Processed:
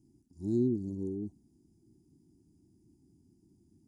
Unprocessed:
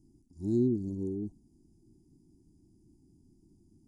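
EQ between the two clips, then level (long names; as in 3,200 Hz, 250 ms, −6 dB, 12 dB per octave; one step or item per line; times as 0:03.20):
high-pass filter 66 Hz
−1.5 dB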